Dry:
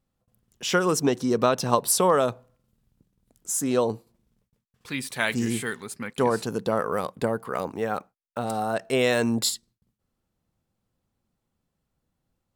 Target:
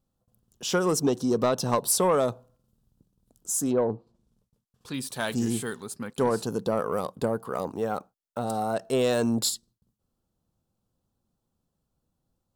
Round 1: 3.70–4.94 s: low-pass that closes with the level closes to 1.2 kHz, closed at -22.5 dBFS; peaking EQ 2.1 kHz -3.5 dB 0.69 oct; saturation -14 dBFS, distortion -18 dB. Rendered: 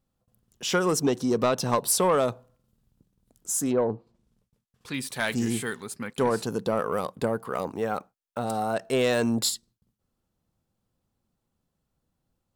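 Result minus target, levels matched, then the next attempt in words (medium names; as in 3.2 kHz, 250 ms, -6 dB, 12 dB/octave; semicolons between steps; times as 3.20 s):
2 kHz band +4.0 dB
3.70–4.94 s: low-pass that closes with the level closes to 1.2 kHz, closed at -22.5 dBFS; peaking EQ 2.1 kHz -13.5 dB 0.69 oct; saturation -14 dBFS, distortion -19 dB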